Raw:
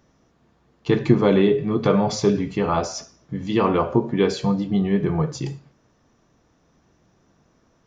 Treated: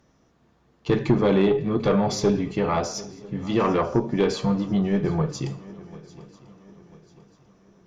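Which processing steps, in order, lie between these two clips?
valve stage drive 11 dB, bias 0.35; shuffle delay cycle 993 ms, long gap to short 3:1, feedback 40%, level -20.5 dB

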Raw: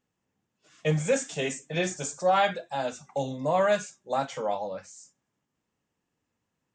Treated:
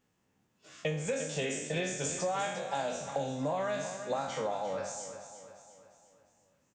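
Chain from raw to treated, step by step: spectral sustain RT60 0.55 s; compression 10:1, threshold -34 dBFS, peak gain reduction 16.5 dB; on a send: feedback delay 351 ms, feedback 47%, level -10.5 dB; on the sum: trim +3.5 dB

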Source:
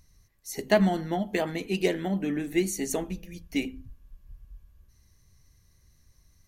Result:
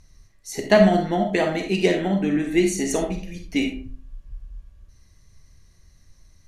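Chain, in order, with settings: Bessel low-pass 8.3 kHz, order 4; reverberation RT60 0.40 s, pre-delay 5 ms, DRR 3.5 dB; trim +5.5 dB

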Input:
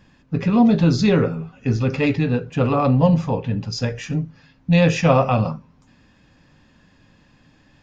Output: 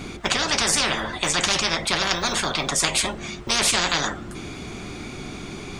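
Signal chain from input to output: speed mistake 33 rpm record played at 45 rpm; spectrum-flattening compressor 10:1

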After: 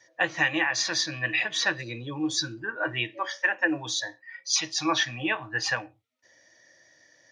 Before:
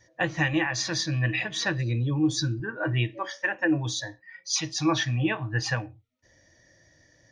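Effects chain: frequency weighting A; trim +2 dB

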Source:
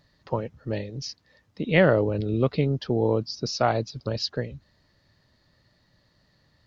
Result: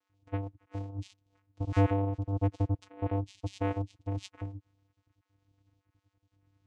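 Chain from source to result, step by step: random holes in the spectrogram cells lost 25%; vocoder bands 4, square 98.6 Hz; trim -5 dB

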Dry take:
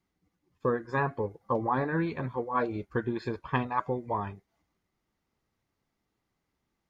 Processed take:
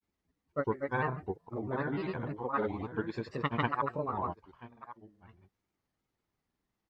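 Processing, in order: on a send: delay 1069 ms -14.5 dB; on the sum: granulator, pitch spread up and down by 3 st; trim -3 dB

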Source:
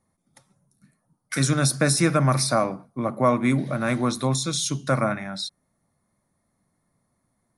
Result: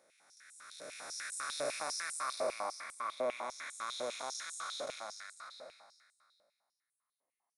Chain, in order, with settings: spectral blur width 1270 ms; reverb removal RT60 1.7 s; step-sequenced high-pass 10 Hz 560–7900 Hz; trim -5 dB

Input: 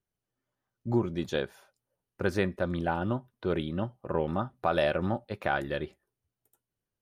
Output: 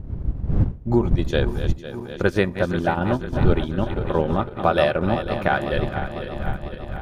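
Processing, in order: backward echo that repeats 250 ms, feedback 80%, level -9 dB; wind noise 93 Hz -33 dBFS; transient shaper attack +2 dB, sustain -6 dB; trim +7 dB

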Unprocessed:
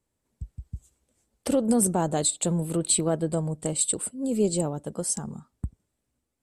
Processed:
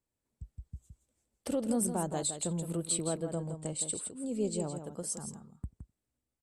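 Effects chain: 3.33–4.74 s: low-pass 10 kHz 24 dB/octave; delay 166 ms -8.5 dB; trim -9 dB

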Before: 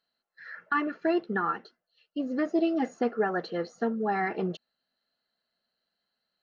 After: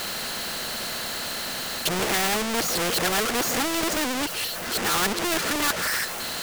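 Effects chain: reverse the whole clip; power-law waveshaper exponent 0.35; spectrum-flattening compressor 2:1; trim +3.5 dB

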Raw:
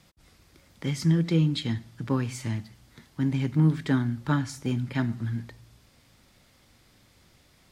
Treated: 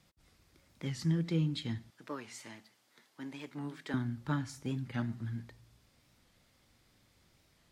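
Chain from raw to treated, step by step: 1.90–3.94 s: high-pass 410 Hz 12 dB/octave; warped record 45 rpm, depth 160 cents; trim -8.5 dB

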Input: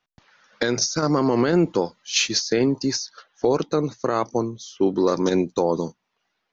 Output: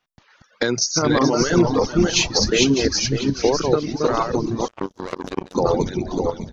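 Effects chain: backward echo that repeats 300 ms, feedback 52%, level -1 dB; on a send: frequency-shifting echo 428 ms, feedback 49%, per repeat -140 Hz, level -8.5 dB; on the sum: reverb removal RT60 1.8 s; 4.68–5.55 s: power-law waveshaper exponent 3; trim +2 dB

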